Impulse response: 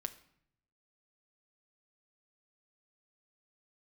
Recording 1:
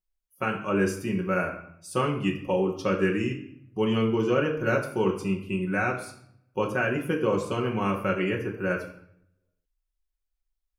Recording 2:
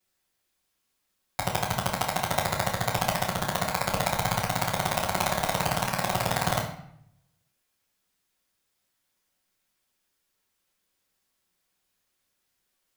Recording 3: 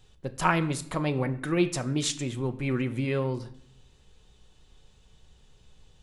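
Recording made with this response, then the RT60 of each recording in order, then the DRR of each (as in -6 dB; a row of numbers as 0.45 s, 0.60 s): 3; 0.65 s, 0.65 s, 0.65 s; -1.0 dB, -9.5 dB, 8.0 dB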